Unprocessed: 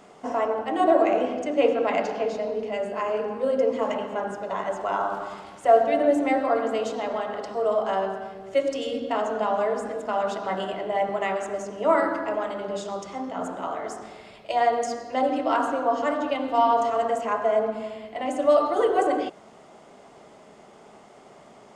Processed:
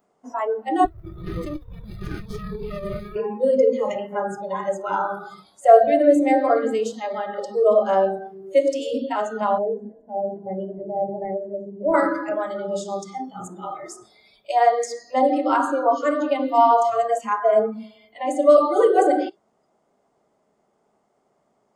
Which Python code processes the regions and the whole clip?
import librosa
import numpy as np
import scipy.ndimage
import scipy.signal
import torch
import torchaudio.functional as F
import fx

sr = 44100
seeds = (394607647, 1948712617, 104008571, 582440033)

y = fx.chain(x, sr, fx.bandpass_edges(low_hz=380.0, high_hz=5500.0),
    fx.over_compress(threshold_db=-32.0, ratio=-1.0),
    fx.running_max(window=33), at=(0.85, 3.16))
y = fx.chain(y, sr, fx.highpass(hz=150.0, slope=12),
    fx.small_body(hz=(270.0, 520.0), ring_ms=35, db=8), at=(7.37, 8.19))
y = fx.chain(y, sr, fx.cvsd(bps=64000),
    fx.moving_average(points=35), at=(9.58, 11.94))
y = fx.noise_reduce_blind(y, sr, reduce_db=23)
y = fx.peak_eq(y, sr, hz=2900.0, db=-7.5, octaves=1.4)
y = y * librosa.db_to_amplitude(6.0)